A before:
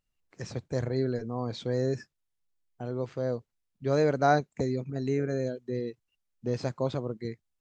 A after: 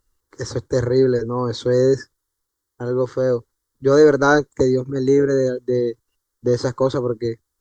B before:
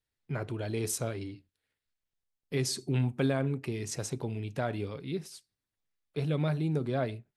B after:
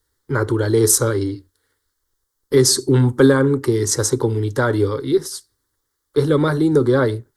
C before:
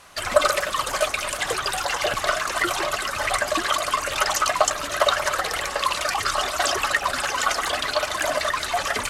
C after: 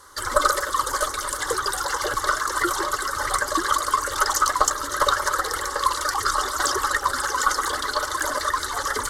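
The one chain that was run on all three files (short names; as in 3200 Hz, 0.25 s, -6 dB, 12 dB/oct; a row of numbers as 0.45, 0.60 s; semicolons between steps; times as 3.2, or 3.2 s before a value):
added harmonics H 4 -23 dB, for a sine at -3 dBFS; fixed phaser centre 680 Hz, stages 6; normalise peaks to -1.5 dBFS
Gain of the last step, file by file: +15.5, +20.0, +3.0 dB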